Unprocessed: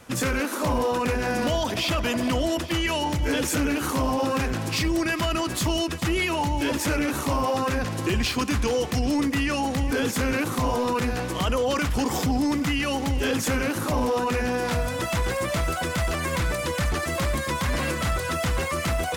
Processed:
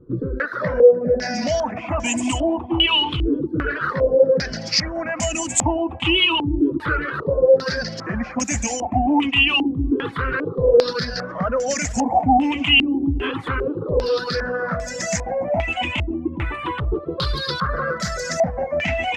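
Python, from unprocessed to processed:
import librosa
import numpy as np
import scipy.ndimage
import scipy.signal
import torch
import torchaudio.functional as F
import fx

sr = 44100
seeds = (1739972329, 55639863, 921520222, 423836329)

y = fx.spec_ripple(x, sr, per_octave=0.62, drift_hz=0.29, depth_db=17)
y = fx.dereverb_blind(y, sr, rt60_s=1.1)
y = fx.echo_feedback(y, sr, ms=437, feedback_pct=58, wet_db=-17.0)
y = fx.filter_held_lowpass(y, sr, hz=2.5, low_hz=310.0, high_hz=7300.0)
y = F.gain(torch.from_numpy(y), -1.5).numpy()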